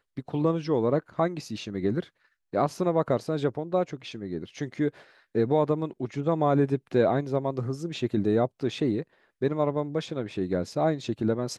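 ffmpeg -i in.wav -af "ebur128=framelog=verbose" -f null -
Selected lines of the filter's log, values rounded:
Integrated loudness:
  I:         -27.9 LUFS
  Threshold: -38.0 LUFS
Loudness range:
  LRA:         2.8 LU
  Threshold: -47.9 LUFS
  LRA low:   -29.4 LUFS
  LRA high:  -26.5 LUFS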